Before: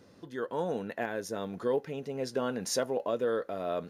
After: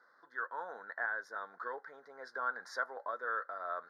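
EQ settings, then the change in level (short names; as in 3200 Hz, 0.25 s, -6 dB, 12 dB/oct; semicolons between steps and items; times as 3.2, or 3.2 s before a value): resonant high-pass 1500 Hz, resonance Q 2.7; Butterworth band-stop 2700 Hz, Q 0.87; air absorption 370 m; +3.5 dB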